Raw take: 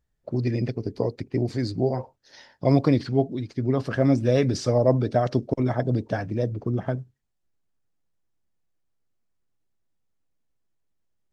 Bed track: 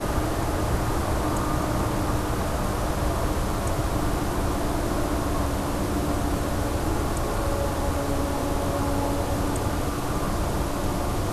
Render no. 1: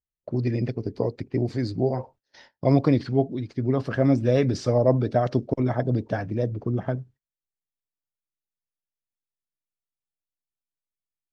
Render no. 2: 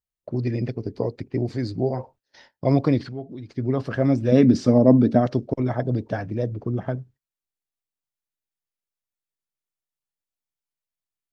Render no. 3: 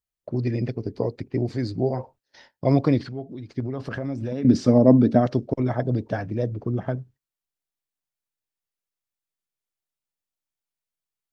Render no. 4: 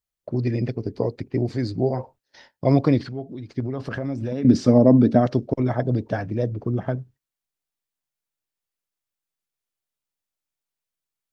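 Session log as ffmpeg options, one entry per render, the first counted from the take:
-af "agate=range=-21dB:threshold=-50dB:ratio=16:detection=peak,highshelf=f=6.5k:g=-10"
-filter_complex "[0:a]asettb=1/sr,asplit=3[a][b][c];[a]atrim=end=3.084[d];[b]atrim=start=3.08:end=3.57,asetpts=PTS-STARTPTS,afade=t=in:d=0.004:c=qsin,afade=t=out:st=0.486:d=0.004:c=qsin,acompressor=threshold=-37dB:ratio=2:attack=3.2:release=140:knee=1:detection=peak[e];[c]atrim=start=3.566[f];[d][e]acrossfade=d=0.004:c1=hsin:c2=qsin[g];[g][f]acrossfade=d=0.004:c1=qsin:c2=hsin,asettb=1/sr,asplit=3[h][i][j];[h]atrim=end=4.324[k];[i]atrim=start=4.32:end=5.26,asetpts=PTS-STARTPTS,afade=t=in:d=0.004:c=qsin,afade=t=out:st=0.936:d=0.004:c=qsin,equalizer=f=240:w=1.8:g=13.5[l];[j]atrim=start=5.256[m];[k][l]acrossfade=d=0.004:c1=hsin:c2=qsin[n];[n][m]acrossfade=d=0.004:c1=qsin:c2=hsin"
-filter_complex "[0:a]asettb=1/sr,asplit=3[a][b][c];[a]atrim=end=3.604[d];[b]atrim=start=3.6:end=4.45,asetpts=PTS-STARTPTS,afade=t=in:d=0.004:c=qsin,afade=t=out:st=0.846:d=0.004:c=qsin,acompressor=threshold=-25dB:ratio=6:attack=3.2:release=140:knee=1:detection=peak[e];[c]atrim=start=4.446[f];[d][e]acrossfade=d=0.004:c1=hsin:c2=qsin[g];[g][f]acrossfade=d=0.004:c1=qsin:c2=hsin"
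-af "volume=1.5dB,alimiter=limit=-3dB:level=0:latency=1"

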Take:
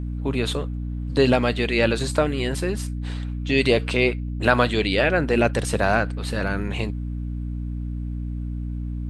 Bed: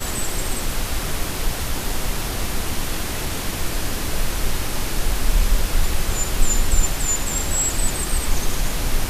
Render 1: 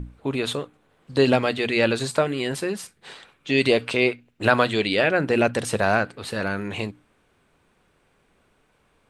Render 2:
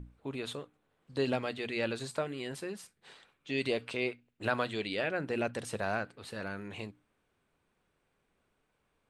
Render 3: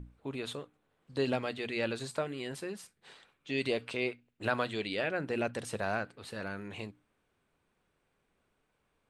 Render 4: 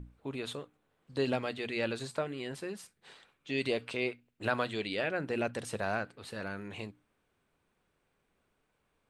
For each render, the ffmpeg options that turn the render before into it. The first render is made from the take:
-af "bandreject=f=60:t=h:w=6,bandreject=f=120:t=h:w=6,bandreject=f=180:t=h:w=6,bandreject=f=240:t=h:w=6,bandreject=f=300:t=h:w=6"
-af "volume=-13dB"
-af anull
-filter_complex "[0:a]asettb=1/sr,asplit=3[a][b][c];[a]atrim=end=2.074[d];[b]atrim=start=2.07:end=2.64,asetpts=PTS-STARTPTS,afade=t=in:d=0.004:c=qsin,afade=t=out:st=0.566:d=0.004:c=qsin,highshelf=f=5.7k:g=-4.5[e];[c]atrim=start=2.636[f];[d][e]acrossfade=d=0.004:c1=hsin:c2=qsin[g];[g][f]acrossfade=d=0.004:c1=qsin:c2=hsin"

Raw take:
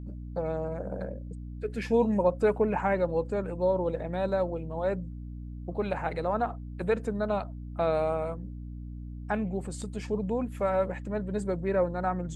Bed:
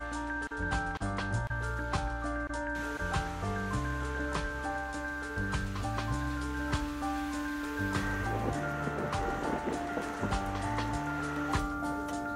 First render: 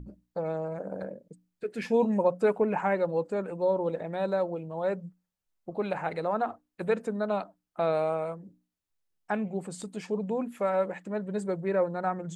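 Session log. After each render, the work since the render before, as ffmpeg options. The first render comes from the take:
-af "bandreject=f=60:t=h:w=6,bandreject=f=120:t=h:w=6,bandreject=f=180:t=h:w=6,bandreject=f=240:t=h:w=6,bandreject=f=300:t=h:w=6"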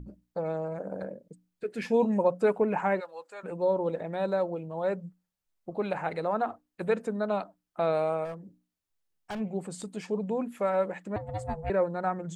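-filter_complex "[0:a]asplit=3[a][b][c];[a]afade=t=out:st=2.99:d=0.02[d];[b]highpass=1.2k,afade=t=in:st=2.99:d=0.02,afade=t=out:st=3.43:d=0.02[e];[c]afade=t=in:st=3.43:d=0.02[f];[d][e][f]amix=inputs=3:normalize=0,asplit=3[g][h][i];[g]afade=t=out:st=8.24:d=0.02[j];[h]asoftclip=type=hard:threshold=-33dB,afade=t=in:st=8.24:d=0.02,afade=t=out:st=9.39:d=0.02[k];[i]afade=t=in:st=9.39:d=0.02[l];[j][k][l]amix=inputs=3:normalize=0,asettb=1/sr,asplit=3[m][n][o];[m]atrim=end=11.164[p];[n]atrim=start=11.16:end=11.7,asetpts=PTS-STARTPTS,afade=t=in:d=0.004:c=qsin,afade=t=out:st=0.536:d=0.004:c=qsin,aeval=exprs='val(0)*sin(2*PI*320*n/s)':c=same[q];[o]atrim=start=11.696[r];[p][q]acrossfade=d=0.004:c1=hsin:c2=qsin[s];[s][r]acrossfade=d=0.004:c1=qsin:c2=hsin"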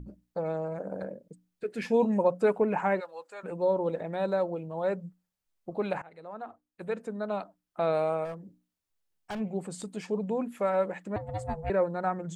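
-filter_complex "[0:a]asplit=2[a][b];[a]atrim=end=6.02,asetpts=PTS-STARTPTS,afade=t=out:st=6.016:d=0.004:c=hsin:silence=0.0749894[c];[b]atrim=start=6.02,asetpts=PTS-STARTPTS,afade=t=in:d=1.94:silence=0.0749894[d];[c][d]concat=n=2:v=0:a=1"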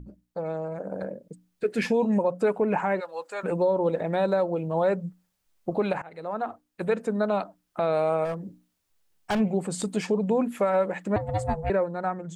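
-af "dynaudnorm=f=380:g=7:m=10.5dB,alimiter=limit=-15dB:level=0:latency=1:release=343"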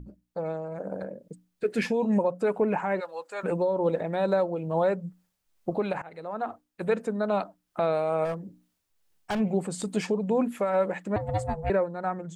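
-af "tremolo=f=2.3:d=0.32"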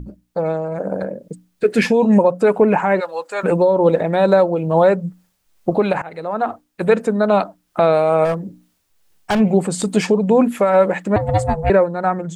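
-af "volume=11.5dB"

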